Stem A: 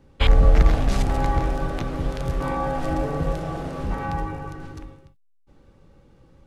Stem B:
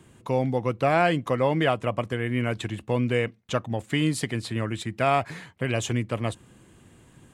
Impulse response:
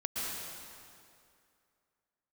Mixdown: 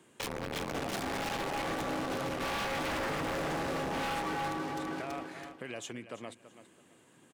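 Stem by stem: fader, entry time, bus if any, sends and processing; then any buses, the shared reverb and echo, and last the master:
-7.0 dB, 0.00 s, no send, echo send -6 dB, waveshaping leveller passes 5
-4.5 dB, 0.00 s, no send, echo send -15 dB, compression 2:1, threshold -35 dBFS, peak gain reduction 10.5 dB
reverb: none
echo: feedback delay 330 ms, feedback 25%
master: high-pass 260 Hz 12 dB/octave; wavefolder -19 dBFS; peak limiter -29 dBFS, peak gain reduction 10 dB

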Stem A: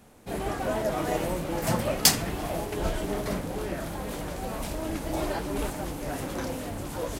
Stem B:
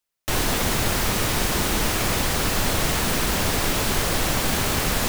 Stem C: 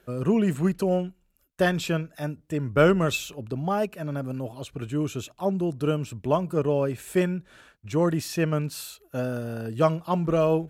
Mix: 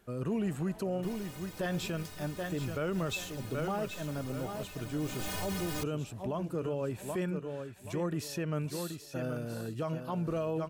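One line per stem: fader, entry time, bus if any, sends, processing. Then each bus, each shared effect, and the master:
-13.5 dB, 0.00 s, no send, no echo send, compression 2:1, threshold -30 dBFS, peak gain reduction 9 dB; auto duck -12 dB, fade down 1.40 s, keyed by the third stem
4.95 s -17.5 dB -> 5.29 s -4.5 dB, 0.75 s, no send, no echo send, inharmonic resonator 90 Hz, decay 0.3 s, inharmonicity 0.03
-6.5 dB, 0.00 s, no send, echo send -9.5 dB, de-esser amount 55%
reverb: none
echo: feedback delay 778 ms, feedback 28%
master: peak limiter -25.5 dBFS, peak gain reduction 11.5 dB

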